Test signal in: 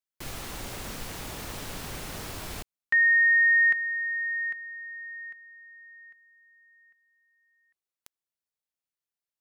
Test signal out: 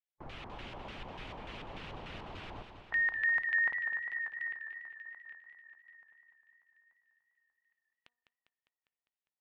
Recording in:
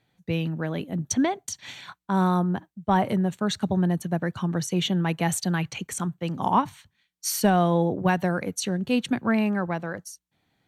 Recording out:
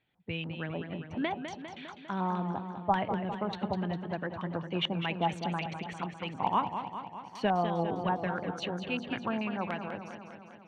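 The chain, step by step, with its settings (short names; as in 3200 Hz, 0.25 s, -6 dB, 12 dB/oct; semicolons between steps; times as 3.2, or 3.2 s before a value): de-hum 241.6 Hz, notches 18; harmonic-percussive split harmonic -6 dB; high shelf 5700 Hz -5.5 dB; LFO low-pass square 3.4 Hz 920–2900 Hz; warbling echo 0.201 s, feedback 65%, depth 90 cents, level -8.5 dB; gain -6 dB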